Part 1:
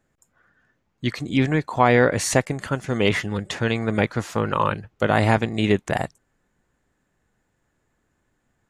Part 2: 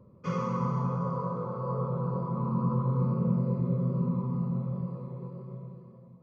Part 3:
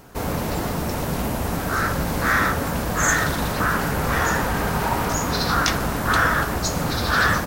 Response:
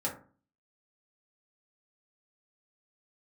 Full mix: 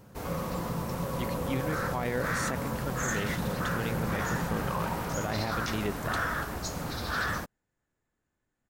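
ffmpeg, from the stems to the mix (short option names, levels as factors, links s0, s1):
-filter_complex "[0:a]adelay=150,volume=0.251[s0];[1:a]alimiter=level_in=1.58:limit=0.0631:level=0:latency=1,volume=0.631,volume=0.631,asplit=2[s1][s2];[s2]volume=0.531[s3];[2:a]volume=0.266[s4];[3:a]atrim=start_sample=2205[s5];[s3][s5]afir=irnorm=-1:irlink=0[s6];[s0][s1][s4][s6]amix=inputs=4:normalize=0,alimiter=limit=0.0891:level=0:latency=1:release=12"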